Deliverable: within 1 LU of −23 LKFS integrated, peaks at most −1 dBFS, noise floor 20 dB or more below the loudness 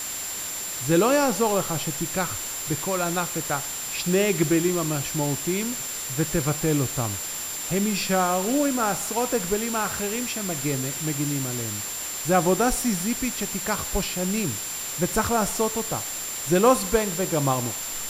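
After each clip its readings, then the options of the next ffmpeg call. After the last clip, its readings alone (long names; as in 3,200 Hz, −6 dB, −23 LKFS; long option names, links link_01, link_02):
interfering tone 7,300 Hz; level of the tone −32 dBFS; background noise floor −32 dBFS; target noise floor −45 dBFS; integrated loudness −24.5 LKFS; sample peak −6.5 dBFS; target loudness −23.0 LKFS
→ -af "bandreject=frequency=7300:width=30"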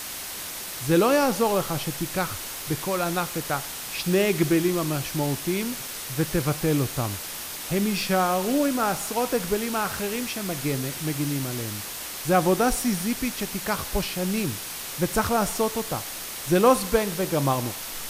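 interfering tone none found; background noise floor −35 dBFS; target noise floor −46 dBFS
→ -af "afftdn=noise_reduction=11:noise_floor=-35"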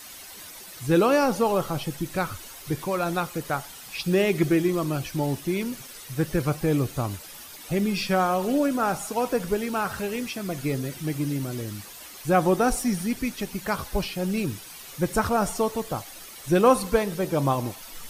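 background noise floor −43 dBFS; target noise floor −46 dBFS
→ -af "afftdn=noise_reduction=6:noise_floor=-43"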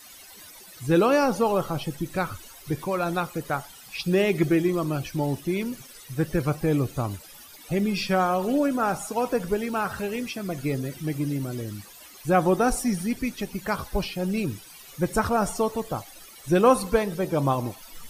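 background noise floor −47 dBFS; integrated loudness −26.0 LKFS; sample peak −7.0 dBFS; target loudness −23.0 LKFS
→ -af "volume=3dB"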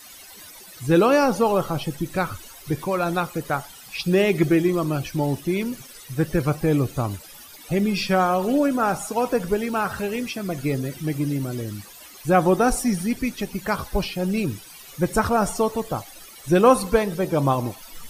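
integrated loudness −23.0 LKFS; sample peak −4.0 dBFS; background noise floor −44 dBFS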